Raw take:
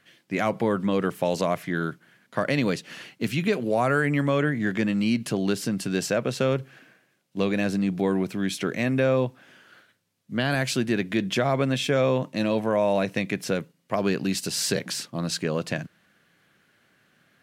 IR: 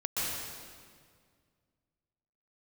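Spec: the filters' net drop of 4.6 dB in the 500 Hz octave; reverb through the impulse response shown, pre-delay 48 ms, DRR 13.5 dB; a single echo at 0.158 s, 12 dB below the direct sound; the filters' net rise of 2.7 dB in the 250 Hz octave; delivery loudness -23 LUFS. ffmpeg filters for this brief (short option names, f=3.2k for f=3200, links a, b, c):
-filter_complex "[0:a]equalizer=f=250:t=o:g=5,equalizer=f=500:t=o:g=-7,aecho=1:1:158:0.251,asplit=2[a][b];[1:a]atrim=start_sample=2205,adelay=48[c];[b][c]afir=irnorm=-1:irlink=0,volume=-21dB[d];[a][d]amix=inputs=2:normalize=0,volume=2dB"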